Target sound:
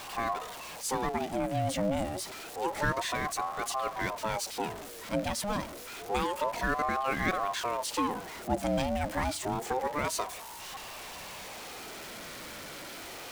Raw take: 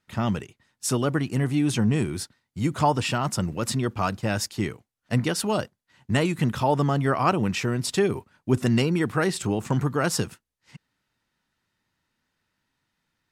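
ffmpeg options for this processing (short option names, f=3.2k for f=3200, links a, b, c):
-af "aeval=exprs='val(0)+0.5*0.0422*sgn(val(0))':c=same,aeval=exprs='val(0)*sin(2*PI*670*n/s+670*0.4/0.28*sin(2*PI*0.28*n/s))':c=same,volume=-6.5dB"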